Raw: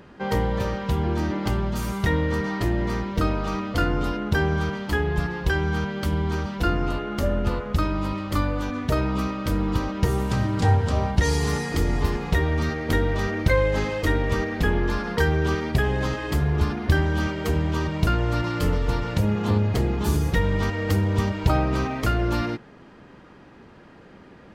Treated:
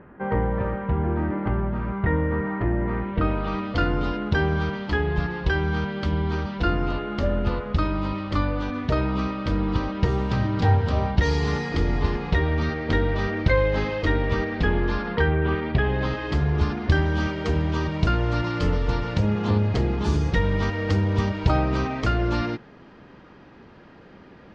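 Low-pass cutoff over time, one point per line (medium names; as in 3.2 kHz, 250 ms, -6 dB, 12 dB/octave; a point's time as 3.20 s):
low-pass 24 dB/octave
2.85 s 2 kHz
3.71 s 4.8 kHz
14.96 s 4.8 kHz
15.38 s 2.8 kHz
16.48 s 5.8 kHz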